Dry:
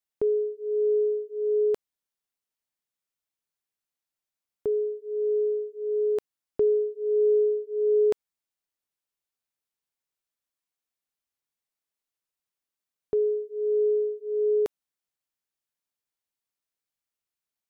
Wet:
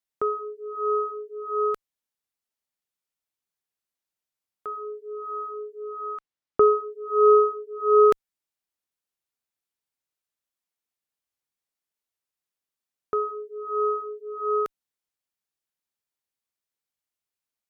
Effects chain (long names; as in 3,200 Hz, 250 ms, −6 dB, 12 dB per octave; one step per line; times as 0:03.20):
harmonic generator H 3 −6 dB, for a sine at −17 dBFS
0:05.95–0:06.84: high-frequency loss of the air 81 metres
level +5.5 dB